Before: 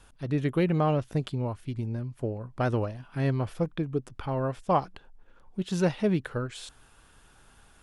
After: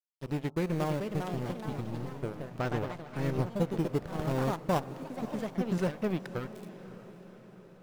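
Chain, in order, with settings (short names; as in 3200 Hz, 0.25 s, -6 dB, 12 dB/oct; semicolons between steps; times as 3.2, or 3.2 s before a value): 3.38–5.78 tilt shelf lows +5.5 dB, about 1100 Hz; compressor 1.5:1, threshold -38 dBFS, peak gain reduction 8 dB; in parallel at -8 dB: decimation with a swept rate 12×, swing 160% 0.28 Hz; on the sum: crossover distortion -35 dBFS; diffused feedback echo 0.558 s, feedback 60%, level -14.5 dB; echoes that change speed 0.529 s, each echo +3 st, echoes 3, each echo -6 dB; on a send at -19.5 dB: brick-wall FIR low-pass 1400 Hz + reverb RT60 0.90 s, pre-delay 5 ms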